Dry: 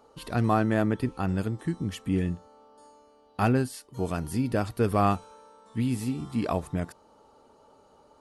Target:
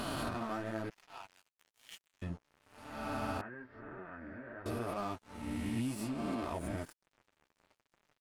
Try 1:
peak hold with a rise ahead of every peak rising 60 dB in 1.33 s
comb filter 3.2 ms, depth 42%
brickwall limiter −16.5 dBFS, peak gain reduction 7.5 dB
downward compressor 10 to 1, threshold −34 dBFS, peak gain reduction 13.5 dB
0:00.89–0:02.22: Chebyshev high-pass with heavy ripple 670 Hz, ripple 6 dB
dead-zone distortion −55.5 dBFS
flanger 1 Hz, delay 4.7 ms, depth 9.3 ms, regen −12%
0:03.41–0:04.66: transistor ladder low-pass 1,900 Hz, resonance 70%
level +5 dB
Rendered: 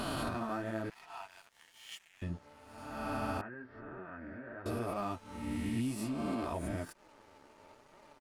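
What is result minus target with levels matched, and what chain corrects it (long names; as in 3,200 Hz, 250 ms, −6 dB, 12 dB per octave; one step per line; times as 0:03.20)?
dead-zone distortion: distortion −7 dB
peak hold with a rise ahead of every peak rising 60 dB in 1.33 s
comb filter 3.2 ms, depth 42%
brickwall limiter −16.5 dBFS, peak gain reduction 7.5 dB
downward compressor 10 to 1, threshold −34 dBFS, peak gain reduction 13.5 dB
0:00.89–0:02.22: Chebyshev high-pass with heavy ripple 670 Hz, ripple 6 dB
dead-zone distortion −47.5 dBFS
flanger 1 Hz, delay 4.7 ms, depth 9.3 ms, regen −12%
0:03.41–0:04.66: transistor ladder low-pass 1,900 Hz, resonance 70%
level +5 dB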